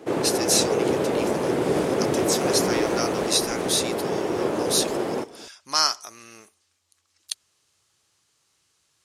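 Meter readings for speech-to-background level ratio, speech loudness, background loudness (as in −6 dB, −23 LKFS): −1.0 dB, −25.5 LKFS, −24.5 LKFS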